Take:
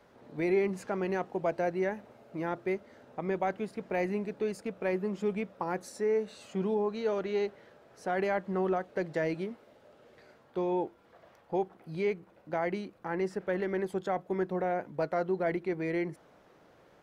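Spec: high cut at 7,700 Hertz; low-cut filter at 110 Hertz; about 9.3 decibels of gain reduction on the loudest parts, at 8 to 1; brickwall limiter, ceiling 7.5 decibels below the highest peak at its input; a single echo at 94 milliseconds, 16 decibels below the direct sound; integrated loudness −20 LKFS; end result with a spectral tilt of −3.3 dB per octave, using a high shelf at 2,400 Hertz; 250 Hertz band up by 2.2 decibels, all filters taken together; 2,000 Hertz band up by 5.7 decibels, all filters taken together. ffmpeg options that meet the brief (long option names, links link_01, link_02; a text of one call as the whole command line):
ffmpeg -i in.wav -af "highpass=110,lowpass=7700,equalizer=frequency=250:width_type=o:gain=4,equalizer=frequency=2000:width_type=o:gain=9,highshelf=frequency=2400:gain=-5,acompressor=threshold=-32dB:ratio=8,alimiter=level_in=4dB:limit=-24dB:level=0:latency=1,volume=-4dB,aecho=1:1:94:0.158,volume=19.5dB" out.wav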